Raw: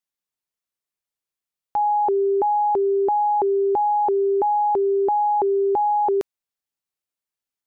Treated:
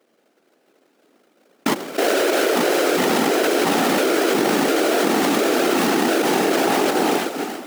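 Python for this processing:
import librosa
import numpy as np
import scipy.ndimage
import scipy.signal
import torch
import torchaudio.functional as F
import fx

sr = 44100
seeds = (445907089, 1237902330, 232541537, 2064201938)

p1 = fx.doppler_pass(x, sr, speed_mps=19, closest_m=18.0, pass_at_s=2.92)
p2 = fx.rev_freeverb(p1, sr, rt60_s=2.3, hf_ratio=0.45, predelay_ms=15, drr_db=11.0)
p3 = fx.spec_erase(p2, sr, start_s=1.73, length_s=0.83, low_hz=470.0, high_hz=990.0)
p4 = fx.sample_hold(p3, sr, seeds[0], rate_hz=1000.0, jitter_pct=20)
p5 = p4 + fx.echo_feedback(p4, sr, ms=343, feedback_pct=35, wet_db=-17.5, dry=0)
p6 = fx.whisperise(p5, sr, seeds[1])
p7 = scipy.signal.sosfilt(scipy.signal.butter(4, 260.0, 'highpass', fs=sr, output='sos'), p6)
y = fx.env_flatten(p7, sr, amount_pct=100)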